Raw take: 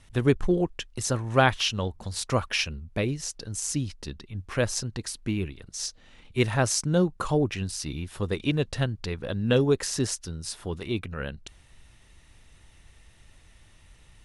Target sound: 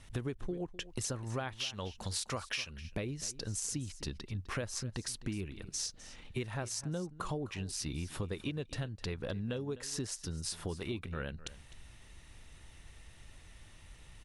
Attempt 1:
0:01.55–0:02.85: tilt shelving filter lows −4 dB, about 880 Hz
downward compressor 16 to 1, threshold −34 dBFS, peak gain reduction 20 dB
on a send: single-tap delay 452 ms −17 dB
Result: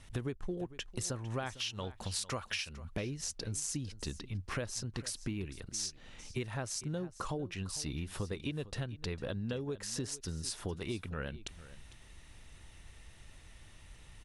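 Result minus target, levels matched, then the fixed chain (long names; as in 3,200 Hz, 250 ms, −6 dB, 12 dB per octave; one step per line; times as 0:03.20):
echo 197 ms late
0:01.55–0:02.85: tilt shelving filter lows −4 dB, about 880 Hz
downward compressor 16 to 1, threshold −34 dBFS, peak gain reduction 20 dB
on a send: single-tap delay 255 ms −17 dB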